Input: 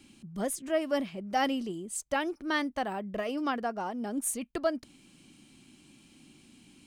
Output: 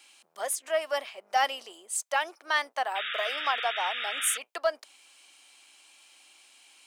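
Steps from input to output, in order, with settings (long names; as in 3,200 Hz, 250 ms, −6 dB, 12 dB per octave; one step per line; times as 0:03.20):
sub-octave generator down 2 octaves, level −5 dB
high-pass filter 650 Hz 24 dB per octave
in parallel at −10 dB: soft clipping −27.5 dBFS, distortion −12 dB
on the sum: sound drawn into the spectrogram noise, 0:02.95–0:04.38, 1,200–3,800 Hz −37 dBFS
level +3 dB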